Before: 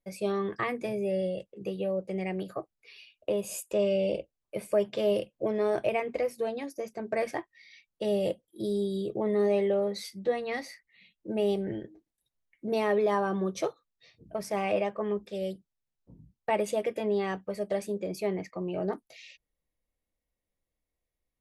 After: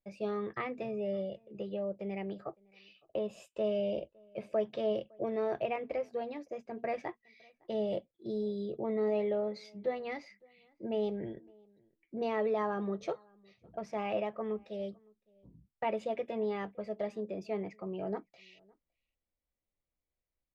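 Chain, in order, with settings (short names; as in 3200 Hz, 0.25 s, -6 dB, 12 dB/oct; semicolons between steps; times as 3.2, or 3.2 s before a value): outdoor echo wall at 100 m, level -28 dB; speed mistake 24 fps film run at 25 fps; air absorption 170 m; gain -5 dB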